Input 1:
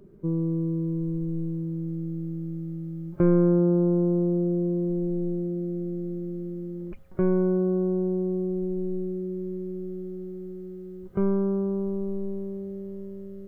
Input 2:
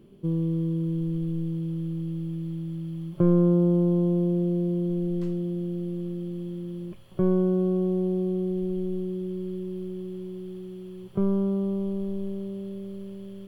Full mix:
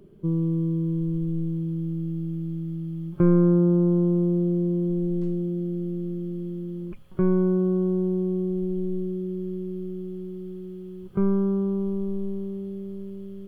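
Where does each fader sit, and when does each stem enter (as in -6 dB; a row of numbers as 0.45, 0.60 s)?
-0.5, -7.5 dB; 0.00, 0.00 s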